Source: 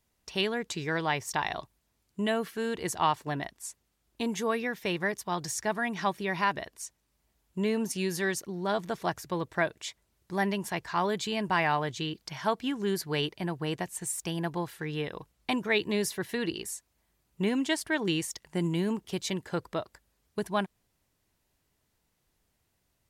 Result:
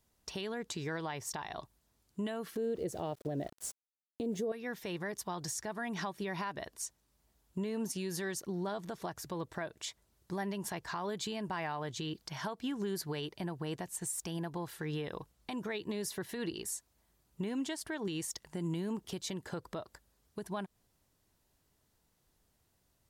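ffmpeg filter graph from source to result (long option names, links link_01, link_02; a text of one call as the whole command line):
ffmpeg -i in.wav -filter_complex "[0:a]asettb=1/sr,asplit=3[link_01][link_02][link_03];[link_01]atrim=end=2.554[link_04];[link_02]atrim=start=2.55:end=4.52,asetpts=PTS-STARTPTS,afade=type=in:duration=0.004:curve=qsin,afade=type=out:start_time=1.966:duration=0.004:curve=qsin,lowshelf=frequency=750:width_type=q:width=3:gain=10,aeval=exprs='val(0)*gte(abs(val(0)),0.00708)':channel_layout=same[link_05];[link_03]atrim=start=4.516[link_06];[link_04][link_05]acrossfade=duration=0.004:curve1=hsin:curve2=qsin[link_07];[link_07][link_06]acrossfade=duration=0.004:curve1=qsin:curve2=hsin,equalizer=frequency=2300:width_type=o:width=0.86:gain=-4.5,acompressor=threshold=-32dB:ratio=4,alimiter=level_in=5dB:limit=-24dB:level=0:latency=1:release=143,volume=-5dB,volume=1dB" out.wav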